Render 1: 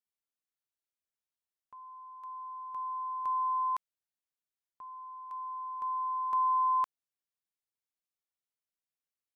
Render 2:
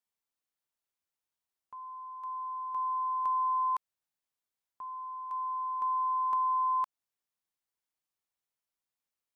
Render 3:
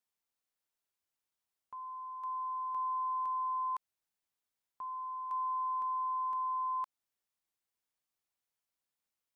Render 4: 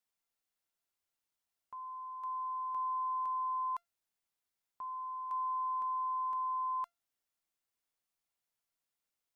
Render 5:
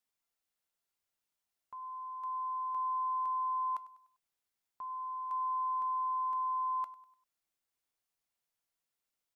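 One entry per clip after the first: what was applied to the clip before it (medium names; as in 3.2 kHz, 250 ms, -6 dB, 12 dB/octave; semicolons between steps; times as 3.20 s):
peaking EQ 930 Hz +4 dB; compression, threshold -29 dBFS, peak gain reduction 6 dB; trim +1.5 dB
peak limiter -31.5 dBFS, peak gain reduction 9.5 dB
feedback comb 690 Hz, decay 0.18 s, harmonics all, mix 60%; trim +7 dB
feedback delay 99 ms, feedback 43%, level -18 dB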